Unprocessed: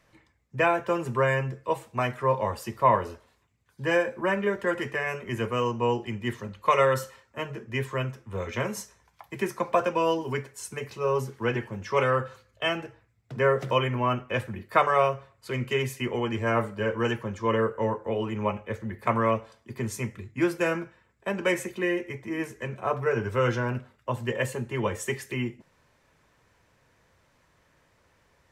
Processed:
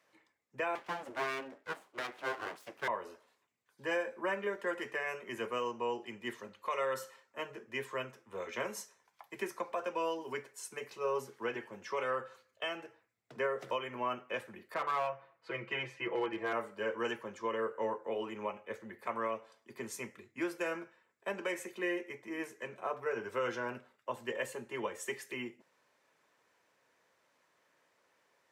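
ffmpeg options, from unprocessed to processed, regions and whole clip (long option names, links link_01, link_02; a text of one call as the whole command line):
ffmpeg -i in.wav -filter_complex "[0:a]asettb=1/sr,asplit=3[link_01][link_02][link_03];[link_01]atrim=end=0.754[link_04];[link_02]atrim=start=0.75:end=2.88,asetpts=PTS-STARTPTS,afade=type=in:duration=0.004:curve=qsin,afade=type=out:start_time=2.126:duration=0.004:curve=qsin,highshelf=frequency=2800:gain=-8.5,aeval=exprs='abs(val(0))':channel_layout=same[link_05];[link_03]atrim=start=2.876[link_06];[link_04][link_05]acrossfade=duration=0.004:curve1=hsin:curve2=qsin[link_07];[link_07][link_06]acrossfade=duration=0.004:curve1=qsin:curve2=hsin,asettb=1/sr,asplit=3[link_08][link_09][link_10];[link_08]atrim=end=14.744[link_11];[link_09]atrim=start=14.74:end=16.53,asetpts=PTS-STARTPTS,afade=type=in:duration=0.004:curve=qsin,afade=type=out:start_time=1.786:duration=0.004:curve=qsin,lowpass=2800,aecho=1:1:6.1:0.94,atrim=end_sample=78939,aeval=exprs='clip(val(0),-1,0.119)':channel_layout=same[link_12];[link_10]atrim=start=16.526[link_13];[link_11][link_12]acrossfade=duration=0.004:curve1=hsin:curve2=qsin[link_14];[link_14][link_13]acrossfade=duration=0.004:curve1=qsin:curve2=hsin,highpass=330,alimiter=limit=-18dB:level=0:latency=1:release=263,volume=-6.5dB" out.wav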